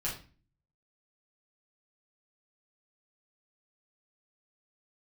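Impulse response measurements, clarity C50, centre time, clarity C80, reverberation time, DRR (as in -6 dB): 7.0 dB, 28 ms, 12.5 dB, 0.35 s, -7.0 dB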